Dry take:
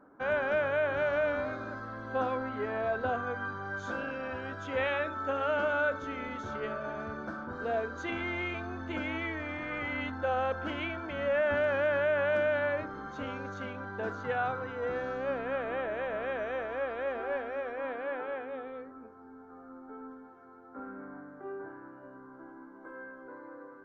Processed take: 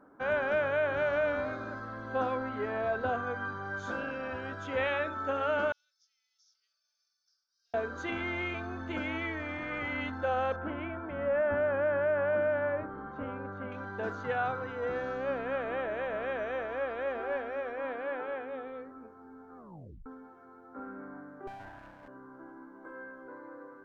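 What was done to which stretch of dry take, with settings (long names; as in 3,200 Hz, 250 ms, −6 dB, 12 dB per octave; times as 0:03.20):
0:05.72–0:07.74: flat-topped band-pass 5,300 Hz, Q 5.3
0:10.56–0:13.72: low-pass filter 1,500 Hz
0:19.57: tape stop 0.49 s
0:21.47–0:22.08: lower of the sound and its delayed copy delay 1.2 ms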